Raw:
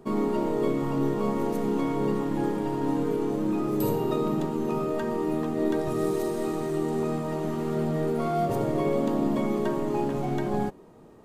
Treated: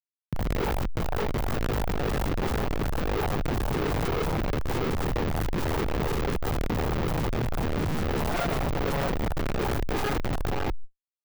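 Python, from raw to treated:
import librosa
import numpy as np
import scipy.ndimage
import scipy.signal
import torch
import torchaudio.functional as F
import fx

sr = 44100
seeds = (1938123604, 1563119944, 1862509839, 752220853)

y = fx.fade_in_head(x, sr, length_s=0.7)
y = fx.peak_eq(y, sr, hz=270.0, db=-9.5, octaves=1.0)
y = y + 0.74 * np.pad(y, (int(2.4 * sr / 1000.0), 0))[:len(y)]
y = y + 10.0 ** (-8.0 / 20.0) * np.pad(y, (int(96 * sr / 1000.0), 0))[:len(y)]
y = np.repeat(y[::3], 3)[:len(y)]
y = fx.steep_lowpass(y, sr, hz=2000.0, slope=96, at=(4.96, 7.05))
y = fx.rev_spring(y, sr, rt60_s=3.2, pass_ms=(46,), chirp_ms=50, drr_db=17.5)
y = fx.schmitt(y, sr, flips_db=-27.5)
y = fx.peak_eq(y, sr, hz=770.0, db=-2.0, octaves=0.66)
y = fx.tube_stage(y, sr, drive_db=31.0, bias=0.6)
y = fx.fold_sine(y, sr, drive_db=19, ceiling_db=-27.5)
y = fx.env_flatten(y, sr, amount_pct=100)
y = y * 10.0 ** (1.5 / 20.0)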